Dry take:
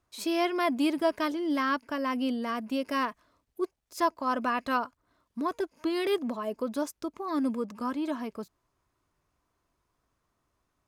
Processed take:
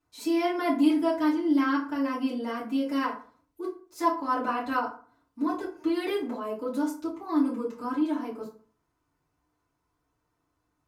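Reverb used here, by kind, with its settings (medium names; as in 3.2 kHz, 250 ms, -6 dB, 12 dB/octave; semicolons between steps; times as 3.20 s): FDN reverb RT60 0.43 s, low-frequency decay 1.05×, high-frequency decay 0.6×, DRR -9.5 dB; trim -10.5 dB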